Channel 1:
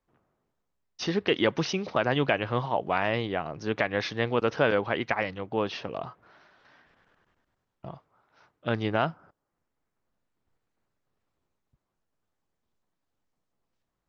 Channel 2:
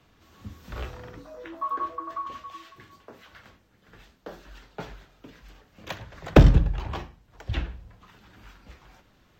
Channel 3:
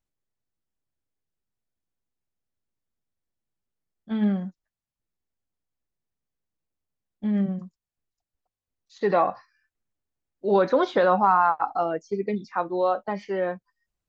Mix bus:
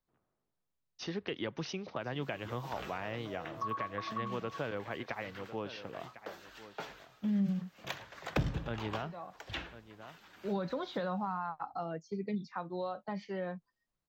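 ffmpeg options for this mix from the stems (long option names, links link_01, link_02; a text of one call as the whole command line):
ffmpeg -i stem1.wav -i stem2.wav -i stem3.wav -filter_complex "[0:a]volume=-9.5dB,asplit=3[link_01][link_02][link_03];[link_02]volume=-16.5dB[link_04];[1:a]highpass=frequency=710:poles=1,adelay=2000,volume=-0.5dB[link_05];[2:a]equalizer=frequency=160:width_type=o:width=0.67:gain=9,equalizer=frequency=400:width_type=o:width=0.67:gain=-3,equalizer=frequency=4000:width_type=o:width=0.67:gain=7,volume=-9.5dB[link_06];[link_03]apad=whole_len=621297[link_07];[link_06][link_07]sidechaincompress=threshold=-49dB:ratio=4:attack=16:release=676[link_08];[link_04]aecho=0:1:1051:1[link_09];[link_01][link_05][link_08][link_09]amix=inputs=4:normalize=0,acrossover=split=200[link_10][link_11];[link_11]acompressor=threshold=-35dB:ratio=4[link_12];[link_10][link_12]amix=inputs=2:normalize=0" out.wav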